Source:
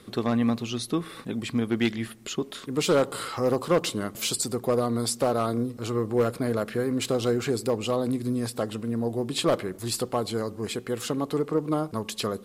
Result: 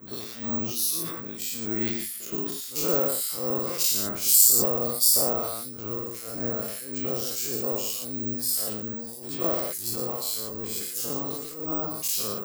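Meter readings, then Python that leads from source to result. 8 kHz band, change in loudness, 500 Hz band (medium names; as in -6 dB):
+10.0 dB, +2.5 dB, -6.5 dB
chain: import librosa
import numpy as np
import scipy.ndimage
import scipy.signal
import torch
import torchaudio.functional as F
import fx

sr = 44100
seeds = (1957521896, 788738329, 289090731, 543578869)

p1 = fx.spec_dilate(x, sr, span_ms=120)
p2 = scipy.signal.sosfilt(scipy.signal.butter(2, 48.0, 'highpass', fs=sr, output='sos'), p1)
p3 = fx.band_shelf(p2, sr, hz=7700.0, db=13.5, octaves=1.7)
p4 = fx.harmonic_tremolo(p3, sr, hz=1.7, depth_pct=100, crossover_hz=2100.0)
p5 = p4 + fx.echo_single(p4, sr, ms=116, db=-7.5, dry=0)
p6 = (np.kron(p5[::2], np.eye(2)[0]) * 2)[:len(p5)]
p7 = fx.sustainer(p6, sr, db_per_s=35.0)
y = p7 * 10.0 ** (-9.5 / 20.0)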